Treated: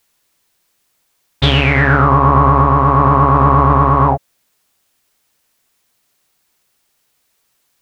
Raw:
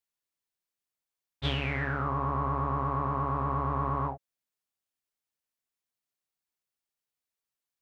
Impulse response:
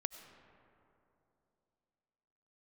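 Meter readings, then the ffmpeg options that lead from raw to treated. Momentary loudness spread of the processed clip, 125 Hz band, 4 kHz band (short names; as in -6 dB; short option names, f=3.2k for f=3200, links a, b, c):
4 LU, +19.5 dB, +18.5 dB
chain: -af "alimiter=level_in=27dB:limit=-1dB:release=50:level=0:latency=1,volume=-1dB"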